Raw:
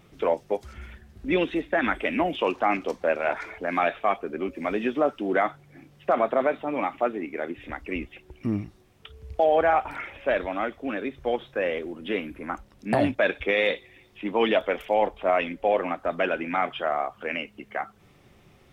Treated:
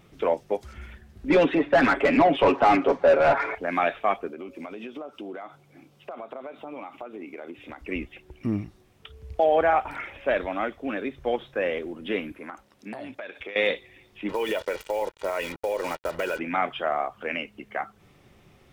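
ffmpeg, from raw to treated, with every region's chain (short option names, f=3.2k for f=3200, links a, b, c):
-filter_complex "[0:a]asettb=1/sr,asplit=3[a][b][c];[a]atrim=end=1.304[d];[b]atrim=start=1.3:end=3.55,asetpts=PTS-STARTPTS,afade=t=in:d=0.004:c=qsin,afade=t=out:st=2.246:d=0.004:c=qsin,highshelf=f=3k:g=-8.5,aecho=1:1:7.2:0.7,atrim=end_sample=99225,asplit=2[e][f];[f]highpass=f=720:p=1,volume=22dB,asoftclip=type=tanh:threshold=-8dB[g];[e][g]amix=inputs=2:normalize=0,lowpass=f=1k:p=1,volume=-6dB[h];[c]atrim=start=3.546[i];[d][h]acrossfade=d=0.004:c1=hsin:c2=qsin[j];[j][i]acrossfade=d=0.004:c1=qsin:c2=hsin,asettb=1/sr,asplit=3[k][l][m];[k]atrim=end=4.284[n];[l]atrim=start=4.28:end=7.81,asetpts=PTS-STARTPTS,afade=t=in:d=0.004:c=qsin,afade=t=out:st=3.526:d=0.004:c=qsin,highpass=f=220:p=1,acompressor=threshold=-33dB:ratio=12:attack=3.2:release=140:knee=1:detection=peak,equalizer=f=1.8k:t=o:w=0.31:g=-9.5[o];[m]atrim=start=7.806[p];[n][o]acrossfade=d=0.004:c1=hsin:c2=qsin[q];[q][p]acrossfade=d=0.004:c1=qsin:c2=hsin,asettb=1/sr,asplit=3[r][s][t];[r]atrim=end=12.324[u];[s]atrim=start=12.32:end=13.56,asetpts=PTS-STARTPTS,afade=t=in:d=0.004:c=qsin,afade=t=out:st=1.236:d=0.004:c=qsin,highpass=f=360:p=1,acompressor=threshold=-33dB:ratio=12:attack=3.2:release=140:knee=1:detection=peak[v];[t]atrim=start=13.556[w];[u][v]acrossfade=d=0.004:c1=hsin:c2=qsin[x];[x][w]acrossfade=d=0.004:c1=qsin:c2=hsin,asettb=1/sr,asplit=3[y][z][aa];[y]atrim=end=14.294[ab];[z]atrim=start=14.29:end=16.39,asetpts=PTS-STARTPTS,afade=t=in:d=0.004:c=qsin,afade=t=out:st=2.096:d=0.004:c=qsin,acrusher=bits=5:mix=0:aa=0.5,aecho=1:1:2.1:0.62,atrim=end_sample=92610,acompressor=threshold=-23dB:ratio=6:attack=3.2:release=140:knee=1:detection=peak[ac];[aa]atrim=start=16.386[ad];[ab][ac]acrossfade=d=0.004:c1=hsin:c2=qsin[ae];[ae][ad]acrossfade=d=0.004:c1=qsin:c2=hsin"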